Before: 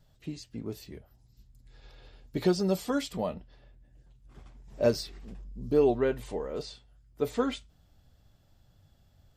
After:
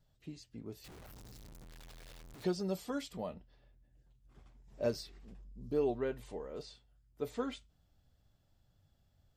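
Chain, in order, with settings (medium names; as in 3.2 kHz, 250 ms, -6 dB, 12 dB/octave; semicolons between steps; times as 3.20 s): 0.84–2.44 s: one-bit comparator; trim -9 dB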